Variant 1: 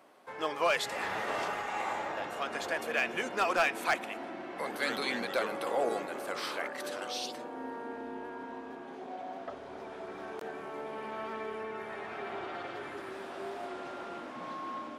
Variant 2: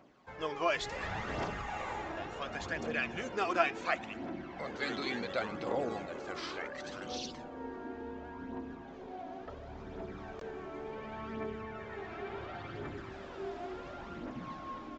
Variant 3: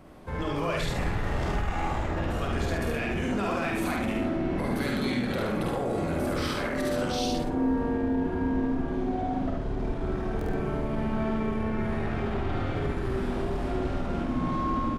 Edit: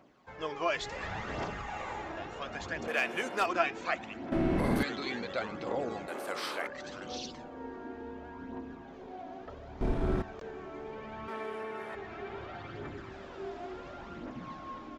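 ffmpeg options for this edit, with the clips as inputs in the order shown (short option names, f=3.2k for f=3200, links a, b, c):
-filter_complex "[0:a]asplit=3[a][b][c];[2:a]asplit=2[d][e];[1:a]asplit=6[f][g][h][i][j][k];[f]atrim=end=2.882[l];[a]atrim=start=2.878:end=3.462[m];[g]atrim=start=3.458:end=4.322[n];[d]atrim=start=4.318:end=4.832[o];[h]atrim=start=4.828:end=6.082[p];[b]atrim=start=6.078:end=6.672[q];[i]atrim=start=6.668:end=9.812[r];[e]atrim=start=9.808:end=10.222[s];[j]atrim=start=10.218:end=11.282[t];[c]atrim=start=11.278:end=11.952[u];[k]atrim=start=11.948[v];[l][m]acrossfade=d=0.004:c1=hsin:c2=hsin[w];[w][n]acrossfade=d=0.004:c1=hsin:c2=hsin[x];[x][o]acrossfade=d=0.004:c1=hsin:c2=hsin[y];[y][p]acrossfade=d=0.004:c1=hsin:c2=hsin[z];[z][q]acrossfade=d=0.004:c1=hsin:c2=hsin[aa];[aa][r]acrossfade=d=0.004:c1=hsin:c2=hsin[ab];[ab][s]acrossfade=d=0.004:c1=hsin:c2=hsin[ac];[ac][t]acrossfade=d=0.004:c1=hsin:c2=hsin[ad];[ad][u]acrossfade=d=0.004:c1=hsin:c2=hsin[ae];[ae][v]acrossfade=d=0.004:c1=hsin:c2=hsin"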